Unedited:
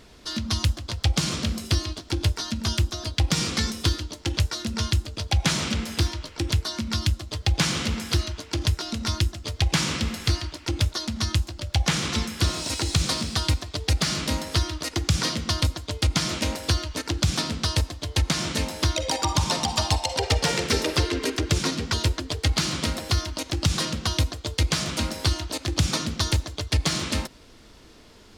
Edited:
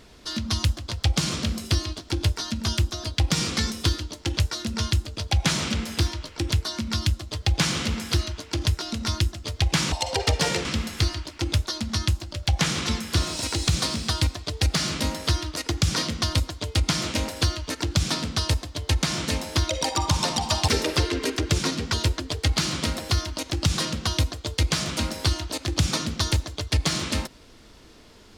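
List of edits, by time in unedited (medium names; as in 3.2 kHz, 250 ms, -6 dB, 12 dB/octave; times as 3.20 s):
19.95–20.68 s: move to 9.92 s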